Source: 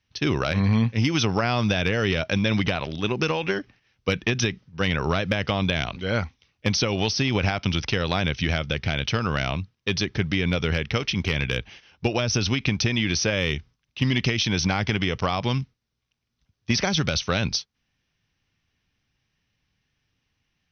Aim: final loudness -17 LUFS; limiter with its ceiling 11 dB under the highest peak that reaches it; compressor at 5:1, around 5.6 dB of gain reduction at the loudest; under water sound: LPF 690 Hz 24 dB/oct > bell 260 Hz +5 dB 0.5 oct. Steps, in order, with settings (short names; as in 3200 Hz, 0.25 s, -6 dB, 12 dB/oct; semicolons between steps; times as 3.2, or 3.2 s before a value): compressor 5:1, threshold -24 dBFS; limiter -23.5 dBFS; LPF 690 Hz 24 dB/oct; bell 260 Hz +5 dB 0.5 oct; gain +18.5 dB